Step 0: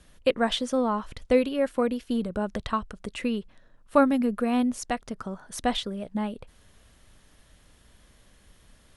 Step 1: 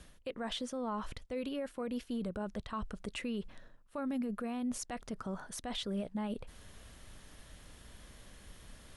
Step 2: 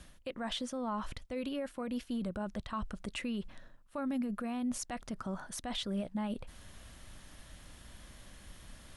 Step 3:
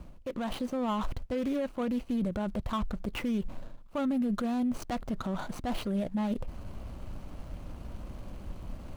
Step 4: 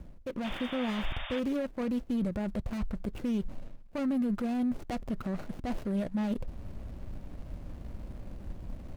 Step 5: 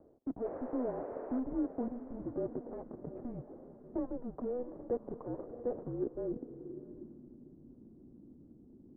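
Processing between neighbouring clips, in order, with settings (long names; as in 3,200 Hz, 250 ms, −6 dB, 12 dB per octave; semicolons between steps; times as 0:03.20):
reversed playback; downward compressor 10 to 1, threshold −33 dBFS, peak gain reduction 19.5 dB; reversed playback; brickwall limiter −33 dBFS, peak gain reduction 10.5 dB; level +3 dB
parametric band 440 Hz −8 dB 0.25 octaves; level +1.5 dB
running median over 25 samples; brickwall limiter −37 dBFS, peak gain reduction 8.5 dB; automatic gain control gain up to 3.5 dB; level +9 dB
running median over 41 samples; sound drawn into the spectrogram noise, 0:00.44–0:01.40, 540–3,700 Hz −42 dBFS
feedback delay with all-pass diffusion 739 ms, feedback 42%, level −11.5 dB; single-sideband voice off tune −250 Hz 430–2,100 Hz; low-pass filter sweep 570 Hz → 240 Hz, 0:05.80–0:07.46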